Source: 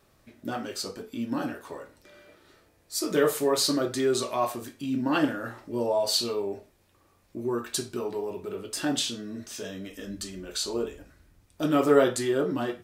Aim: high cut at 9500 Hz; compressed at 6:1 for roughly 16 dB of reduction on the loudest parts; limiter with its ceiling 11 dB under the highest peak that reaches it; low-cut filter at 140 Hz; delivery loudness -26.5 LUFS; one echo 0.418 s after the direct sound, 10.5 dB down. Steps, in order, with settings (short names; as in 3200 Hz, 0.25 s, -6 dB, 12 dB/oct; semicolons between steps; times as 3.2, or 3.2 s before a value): HPF 140 Hz; LPF 9500 Hz; compressor 6:1, threshold -33 dBFS; limiter -30.5 dBFS; echo 0.418 s -10.5 dB; gain +13.5 dB